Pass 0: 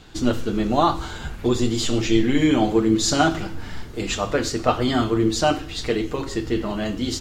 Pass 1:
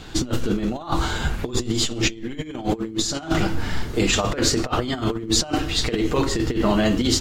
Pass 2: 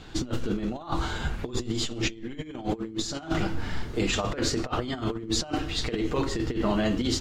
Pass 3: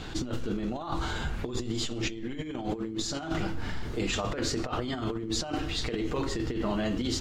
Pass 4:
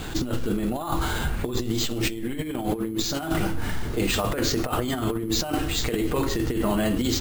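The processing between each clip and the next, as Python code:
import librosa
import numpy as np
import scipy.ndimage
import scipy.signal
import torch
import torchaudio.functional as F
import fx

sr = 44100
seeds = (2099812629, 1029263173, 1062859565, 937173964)

y1 = fx.over_compress(x, sr, threshold_db=-25.0, ratio=-0.5)
y1 = F.gain(torch.from_numpy(y1), 3.5).numpy()
y2 = fx.high_shelf(y1, sr, hz=8200.0, db=-9.5)
y2 = F.gain(torch.from_numpy(y2), -6.0).numpy()
y3 = fx.env_flatten(y2, sr, amount_pct=50)
y3 = F.gain(torch.from_numpy(y3), -5.0).numpy()
y4 = np.repeat(y3[::4], 4)[:len(y3)]
y4 = F.gain(torch.from_numpy(y4), 6.0).numpy()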